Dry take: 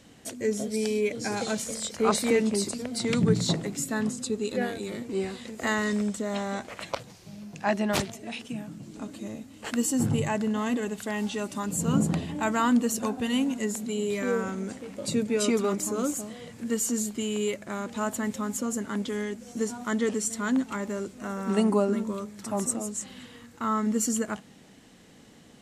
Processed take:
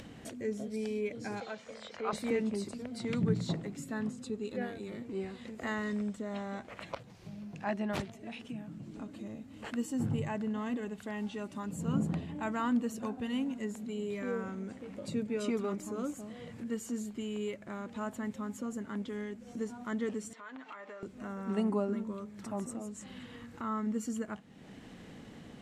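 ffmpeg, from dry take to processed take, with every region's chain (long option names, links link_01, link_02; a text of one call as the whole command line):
ffmpeg -i in.wav -filter_complex "[0:a]asettb=1/sr,asplit=3[link_01][link_02][link_03];[link_01]atrim=end=1.404[link_04];[link_02]atrim=start=1.4:end=2.13,asetpts=PTS-STARTPTS,afade=type=in:duration=0.004:curve=qsin,afade=type=out:start_time=0.726:duration=0.004:curve=qsin,highpass=58,acrossover=split=3400[link_05][link_06];[link_06]acompressor=threshold=-38dB:ratio=4:attack=1:release=60[link_07];[link_05][link_07]amix=inputs=2:normalize=0,acrossover=split=430 6100:gain=0.2 1 0.0794[link_08][link_09][link_10];[link_08][link_09][link_10]amix=inputs=3:normalize=0[link_11];[link_03]atrim=start=2.126[link_12];[link_04][link_11]acrossfade=duration=0.004:curve1=hsin:curve2=qsin[link_13];[link_13][link_12]acrossfade=duration=0.004:curve1=qsin:curve2=hsin,asettb=1/sr,asplit=3[link_14][link_15][link_16];[link_14]atrim=end=20.334[link_17];[link_15]atrim=start=20.33:end=21.03,asetpts=PTS-STARTPTS,afade=type=in:duration=0.004:curve=qsin,afade=type=out:start_time=0.696:duration=0.004:curve=qsin,highpass=680,lowpass=3800,aecho=1:1:6.6:0.47,atrim=end_sample=30870,acompressor=threshold=-42dB:ratio=4:attack=3.2:release=140:knee=1:detection=peak[link_18];[link_16]atrim=start=21.026[link_19];[link_17][link_18]acrossfade=duration=0.004:curve1=hsin:curve2=qsin[link_20];[link_20][link_19]acrossfade=duration=0.004:curve1=qsin:curve2=hsin,bass=frequency=250:gain=3,treble=frequency=4000:gain=-10,acompressor=mode=upward:threshold=-29dB:ratio=2.5,volume=-9dB" out.wav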